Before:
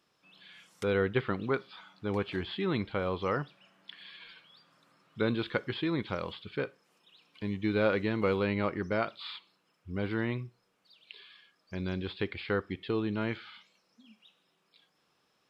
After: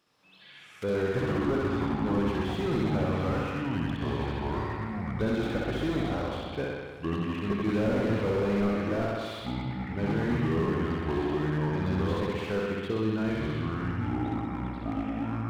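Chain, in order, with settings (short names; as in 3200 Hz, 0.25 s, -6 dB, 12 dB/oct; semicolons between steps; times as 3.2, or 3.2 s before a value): flutter echo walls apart 11 m, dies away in 1.4 s; echoes that change speed 93 ms, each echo -5 st, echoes 2; slew limiter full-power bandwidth 29 Hz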